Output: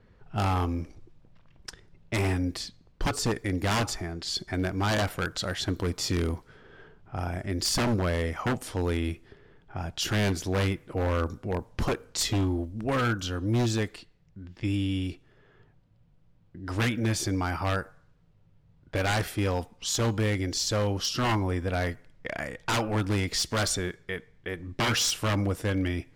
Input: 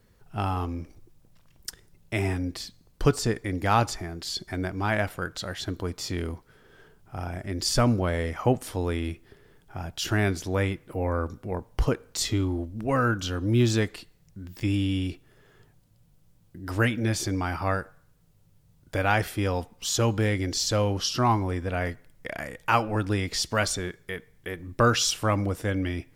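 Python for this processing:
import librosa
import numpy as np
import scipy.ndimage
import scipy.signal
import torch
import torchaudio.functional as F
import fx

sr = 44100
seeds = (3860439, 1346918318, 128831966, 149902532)

y = fx.rider(x, sr, range_db=4, speed_s=2.0)
y = 10.0 ** (-20.0 / 20.0) * (np.abs((y / 10.0 ** (-20.0 / 20.0) + 3.0) % 4.0 - 2.0) - 1.0)
y = fx.env_lowpass(y, sr, base_hz=2700.0, full_db=-26.5)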